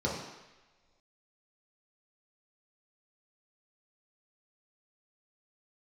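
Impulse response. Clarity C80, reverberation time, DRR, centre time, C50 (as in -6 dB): 5.5 dB, not exponential, -5.5 dB, 54 ms, 2.5 dB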